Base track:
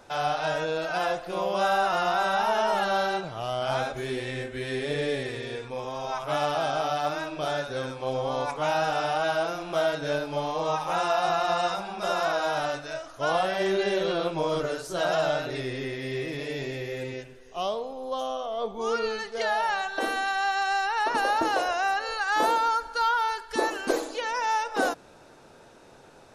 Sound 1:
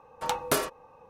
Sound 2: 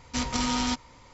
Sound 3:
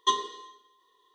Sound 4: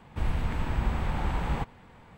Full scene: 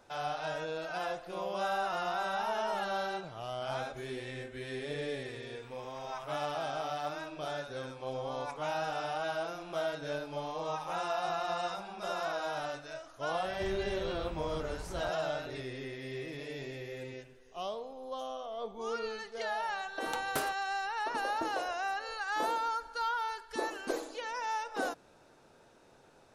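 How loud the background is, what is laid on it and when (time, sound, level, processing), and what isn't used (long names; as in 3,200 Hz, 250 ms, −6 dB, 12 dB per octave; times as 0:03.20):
base track −9 dB
0:05.46: mix in 4 −16 dB + high-pass filter 1,500 Hz
0:13.45: mix in 4 −15.5 dB + multiband upward and downward compressor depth 70%
0:19.84: mix in 1 −10 dB
not used: 2, 3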